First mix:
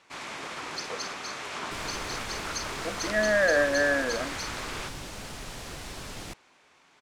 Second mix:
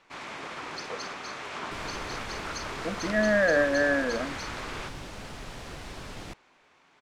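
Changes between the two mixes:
speech: remove high-pass 300 Hz; master: add treble shelf 5.4 kHz -10.5 dB

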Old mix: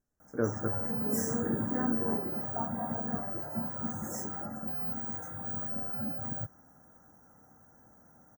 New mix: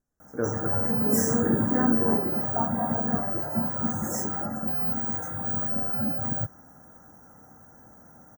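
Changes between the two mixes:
background +8.0 dB; reverb: on, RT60 1.5 s

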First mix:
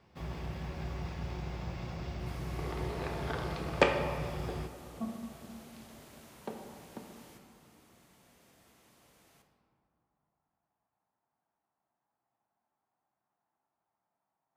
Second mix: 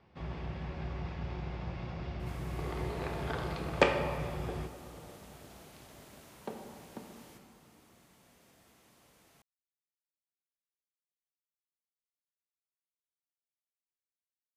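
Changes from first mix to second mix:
speech: muted; first sound: add low-pass 3.9 kHz 12 dB/octave

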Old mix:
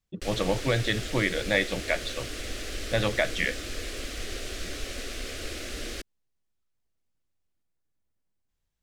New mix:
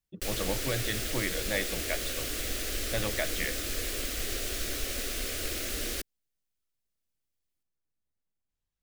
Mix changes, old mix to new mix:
speech -7.0 dB; background: remove distance through air 55 m

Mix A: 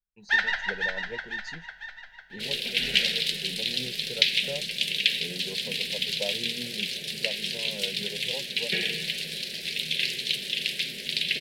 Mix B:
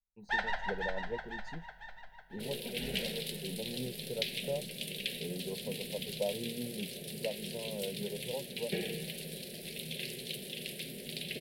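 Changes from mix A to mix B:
first sound +3.5 dB; master: add high-order bell 3.1 kHz -14.5 dB 2.8 oct

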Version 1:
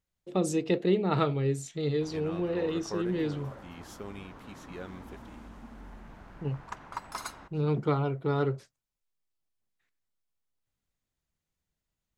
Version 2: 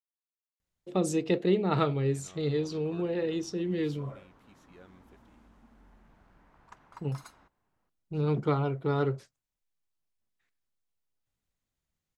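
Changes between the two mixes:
speech: entry +0.60 s; background -12.0 dB

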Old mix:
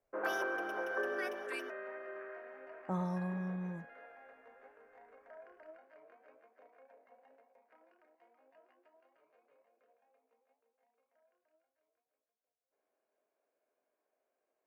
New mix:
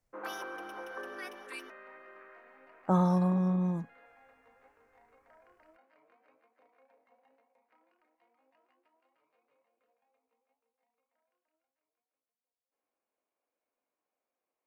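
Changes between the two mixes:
speech +10.5 dB; background: add graphic EQ with 31 bands 400 Hz -10 dB, 630 Hz -11 dB, 1.6 kHz -7 dB, 4 kHz +5 dB, 10 kHz +5 dB

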